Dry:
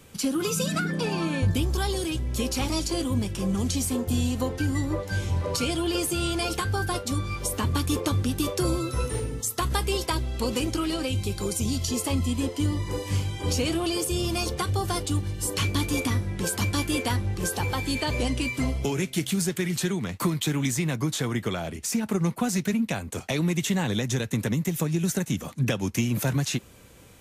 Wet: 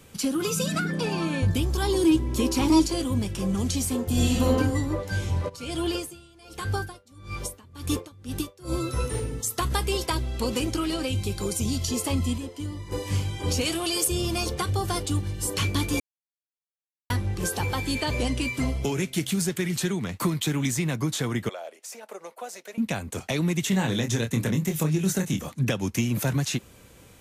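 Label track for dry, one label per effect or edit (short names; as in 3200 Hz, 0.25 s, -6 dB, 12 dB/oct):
1.820000	2.860000	small resonant body resonances 320/970 Hz, height 13 dB, ringing for 40 ms
4.120000	4.530000	reverb throw, RT60 0.9 s, DRR -5.5 dB
5.480000	8.760000	dB-linear tremolo 0.85 Hz -> 2.8 Hz, depth 27 dB
12.380000	12.920000	gain -8 dB
13.610000	14.080000	tilt +2 dB/oct
16.000000	17.100000	mute
21.490000	22.780000	ladder high-pass 480 Hz, resonance 55%
23.690000	25.490000	doubler 26 ms -6 dB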